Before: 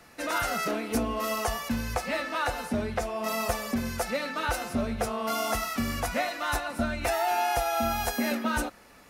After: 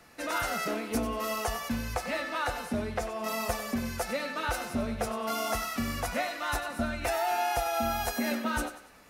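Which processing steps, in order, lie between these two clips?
thinning echo 95 ms, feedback 41%, level -11.5 dB; gain -2.5 dB

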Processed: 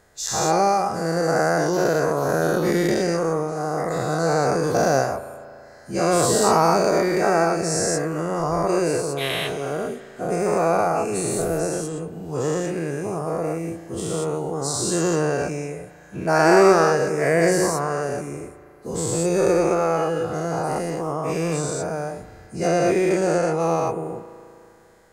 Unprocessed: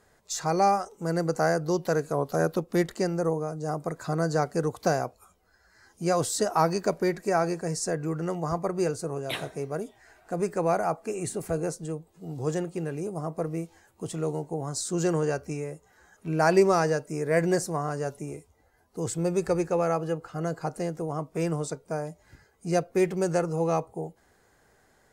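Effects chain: spectral dilation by 0.24 s; 22.67–23.6 high shelf 9600 Hz -9 dB; spring tank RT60 2.6 s, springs 36 ms, chirp 70 ms, DRR 13.5 dB

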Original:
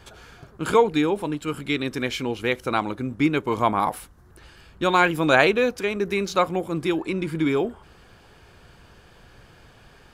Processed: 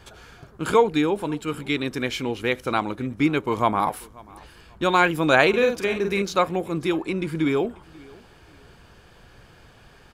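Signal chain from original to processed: 5.49–6.22 doubler 46 ms -5 dB; feedback echo 0.537 s, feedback 30%, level -24 dB

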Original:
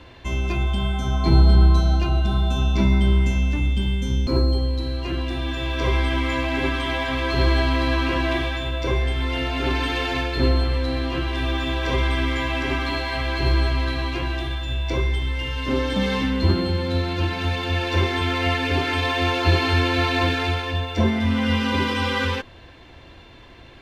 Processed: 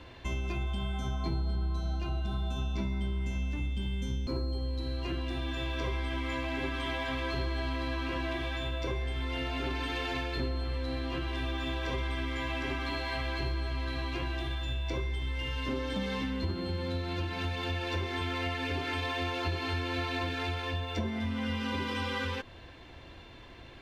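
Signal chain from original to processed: compressor 5:1, threshold -26 dBFS, peak gain reduction 14.5 dB; gain -4.5 dB

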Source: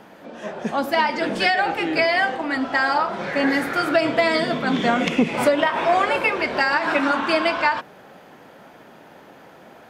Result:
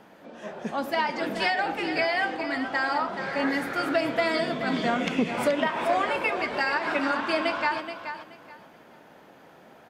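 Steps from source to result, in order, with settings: feedback echo 0.427 s, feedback 22%, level -9.5 dB; gain -6.5 dB

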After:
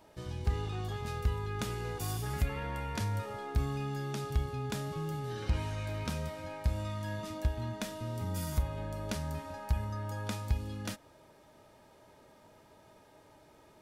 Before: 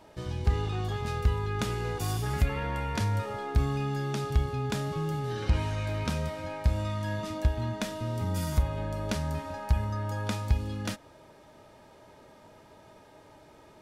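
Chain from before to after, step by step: high shelf 9900 Hz +8 dB; gain -5.5 dB

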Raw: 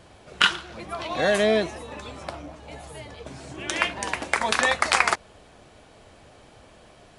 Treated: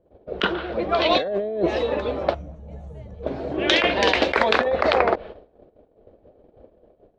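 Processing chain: treble ducked by the level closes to 690 Hz, closed at -17.5 dBFS; gate -48 dBFS, range -23 dB; low-pass opened by the level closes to 540 Hz, open at -22.5 dBFS; ten-band EQ 125 Hz -8 dB, 500 Hz +9 dB, 1000 Hz -5 dB, 4000 Hz +11 dB; negative-ratio compressor -27 dBFS, ratio -1; spectral gain 2.34–3.23, 230–5600 Hz -18 dB; gain +7 dB

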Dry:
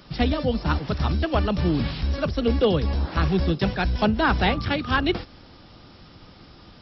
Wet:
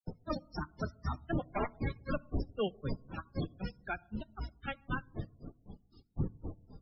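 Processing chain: wind noise 200 Hz -19 dBFS; Doppler pass-by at 1.53, 12 m/s, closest 5.1 m; dynamic EQ 3300 Hz, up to -6 dB, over -53 dBFS, Q 1.4; in parallel at 0 dB: compressor 12:1, threshold -34 dBFS, peak gain reduction 28 dB; on the sum: tilt shelf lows -6.5 dB, about 1300 Hz; wrapped overs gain 17 dB; grains 0.143 s, grains 3.9/s, spray 0.1 s, pitch spread up and down by 0 st; limiter -28 dBFS, peak gain reduction 11 dB; flange 0.48 Hz, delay 0.6 ms, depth 8.9 ms, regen -46%; on a send at -21 dB: reverb RT60 0.90 s, pre-delay 4 ms; on the sum: loudest bins only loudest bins 32; gain +8.5 dB

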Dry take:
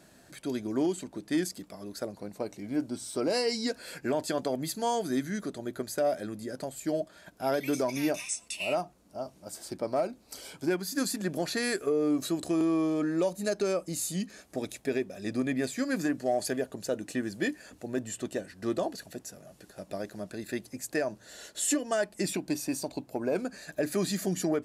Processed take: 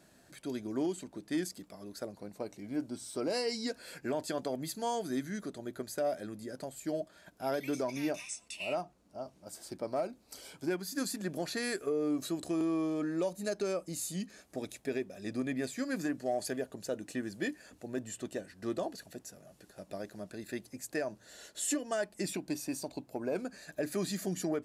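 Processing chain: 7.66–9.47 high shelf 10000 Hz -9 dB; gain -5 dB

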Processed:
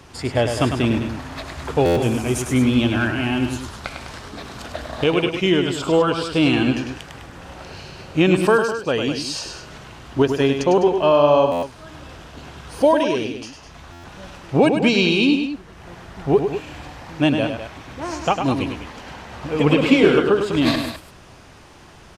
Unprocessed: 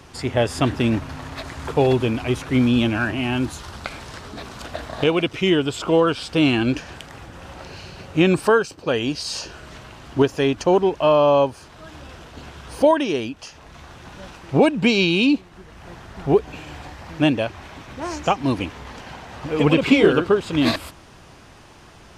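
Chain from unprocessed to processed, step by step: 2.02–2.54 resonant high shelf 5300 Hz +11.5 dB, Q 1.5; loudspeakers at several distances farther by 35 m -7 dB, 70 m -11 dB; stuck buffer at 1.85/11.51/13.92, samples 512, times 9

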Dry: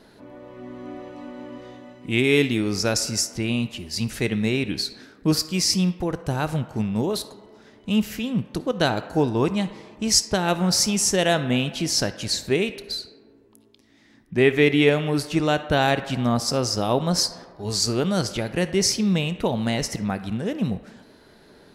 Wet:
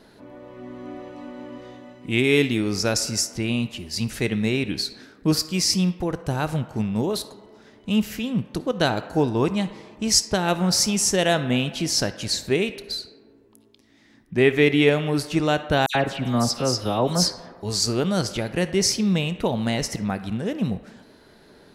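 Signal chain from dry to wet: 15.86–17.63 dispersion lows, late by 89 ms, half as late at 2900 Hz

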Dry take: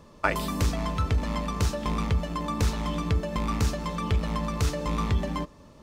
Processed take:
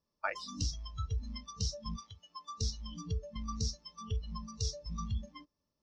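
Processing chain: 1.96–2.61 HPF 480 Hz 6 dB/oct; spectral noise reduction 25 dB; ladder low-pass 5800 Hz, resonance 75%; gain +2 dB

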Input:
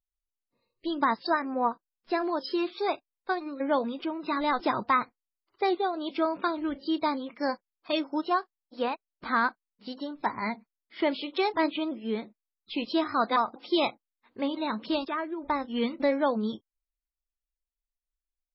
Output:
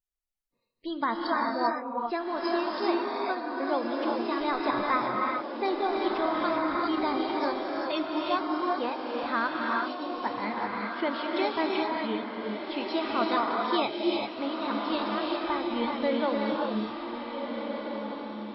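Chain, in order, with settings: diffused feedback echo 1.527 s, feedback 40%, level -6 dB; 5.94–7.32 transient shaper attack 0 dB, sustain +6 dB; non-linear reverb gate 0.42 s rising, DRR -0.5 dB; gain -3.5 dB

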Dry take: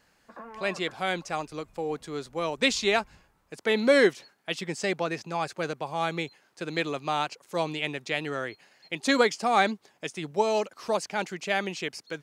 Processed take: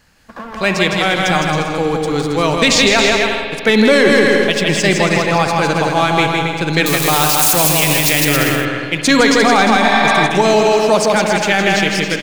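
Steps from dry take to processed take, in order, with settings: 6.86–8.21 switching spikes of -20.5 dBFS; sample leveller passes 1; low shelf 220 Hz +7.5 dB; bouncing-ball echo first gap 0.16 s, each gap 0.7×, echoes 5; 9.85–10.25 spectral repair 590–5700 Hz before; bell 450 Hz -5.5 dB 2.6 oct; spring tank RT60 2.6 s, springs 51 ms, chirp 35 ms, DRR 7 dB; maximiser +14 dB; gain -1 dB

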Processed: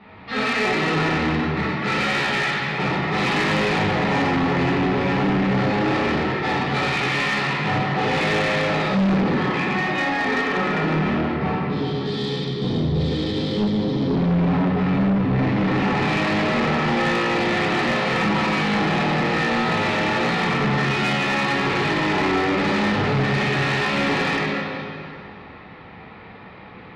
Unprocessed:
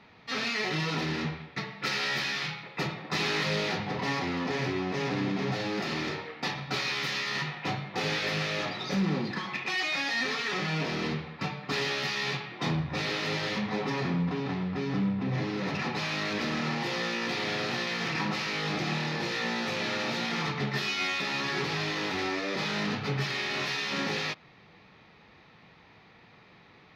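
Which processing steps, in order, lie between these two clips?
9.62–12.06 high shelf 2800 Hz -11.5 dB; 11.58–14.15 spectral gain 530–3000 Hz -17 dB; air absorption 330 m; plate-style reverb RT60 2.5 s, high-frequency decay 0.8×, DRR -9 dB; soft clip -23 dBFS, distortion -11 dB; gain +7 dB

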